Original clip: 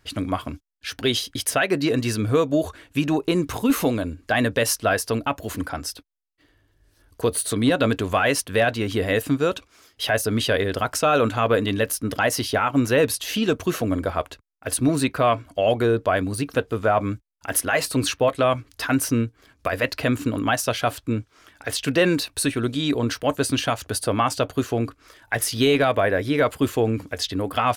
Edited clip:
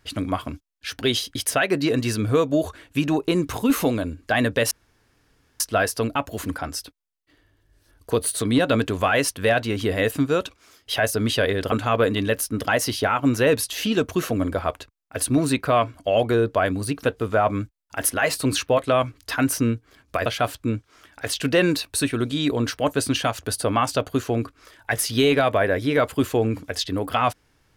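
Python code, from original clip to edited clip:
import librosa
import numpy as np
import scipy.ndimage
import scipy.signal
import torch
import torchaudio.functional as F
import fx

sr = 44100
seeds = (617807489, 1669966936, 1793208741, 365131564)

y = fx.edit(x, sr, fx.insert_room_tone(at_s=4.71, length_s=0.89),
    fx.cut(start_s=10.83, length_s=0.4),
    fx.cut(start_s=19.77, length_s=0.92), tone=tone)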